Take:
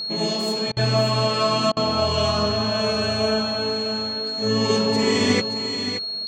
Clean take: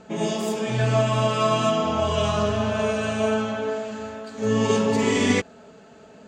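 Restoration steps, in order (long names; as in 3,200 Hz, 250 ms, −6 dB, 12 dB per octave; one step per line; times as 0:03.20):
notch filter 4,300 Hz, Q 30
repair the gap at 0:00.72/0:01.72, 46 ms
echo removal 575 ms −9 dB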